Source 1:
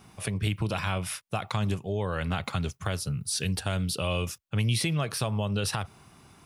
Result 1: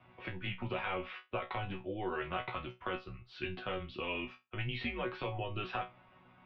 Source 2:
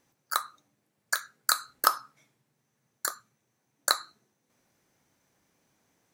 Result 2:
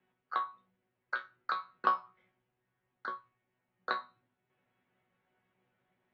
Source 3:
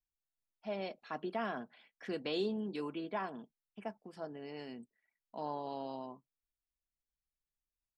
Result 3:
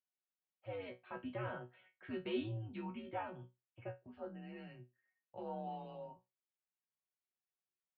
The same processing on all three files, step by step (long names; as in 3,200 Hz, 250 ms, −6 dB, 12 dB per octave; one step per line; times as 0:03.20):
single-sideband voice off tune −100 Hz 200–3,200 Hz
resonators tuned to a chord B2 fifth, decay 0.21 s
level +7 dB